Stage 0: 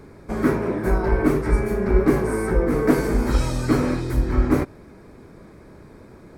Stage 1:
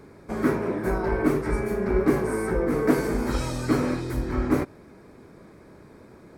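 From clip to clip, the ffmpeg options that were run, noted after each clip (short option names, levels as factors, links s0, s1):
-af "lowshelf=f=73:g=-10,volume=0.75"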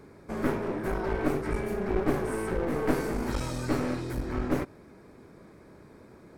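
-af "aeval=exprs='clip(val(0),-1,0.0376)':c=same,volume=0.708"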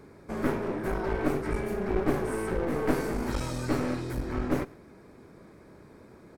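-af "aecho=1:1:112:0.0668"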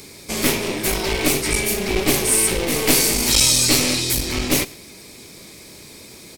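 -af "aexciter=amount=9.5:drive=6.9:freq=2300,volume=2"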